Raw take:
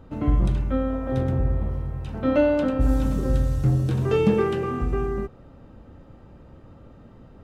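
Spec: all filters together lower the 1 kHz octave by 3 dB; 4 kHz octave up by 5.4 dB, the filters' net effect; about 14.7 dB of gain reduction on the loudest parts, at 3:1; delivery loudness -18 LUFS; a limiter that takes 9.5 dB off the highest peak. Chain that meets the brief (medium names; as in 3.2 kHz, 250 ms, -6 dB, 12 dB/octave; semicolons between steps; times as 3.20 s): peaking EQ 1 kHz -4.5 dB; peaking EQ 4 kHz +7.5 dB; compression 3:1, threshold -36 dBFS; trim +23 dB; peak limiter -8.5 dBFS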